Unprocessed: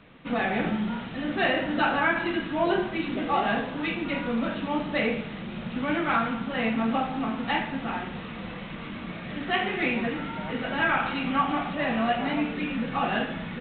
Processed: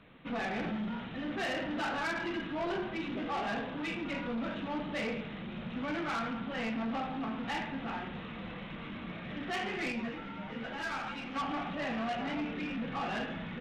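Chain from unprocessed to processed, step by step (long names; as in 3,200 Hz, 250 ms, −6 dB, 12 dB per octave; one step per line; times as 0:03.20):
soft clipping −25.5 dBFS, distortion −11 dB
0:09.92–0:11.36: string-ensemble chorus
level −5 dB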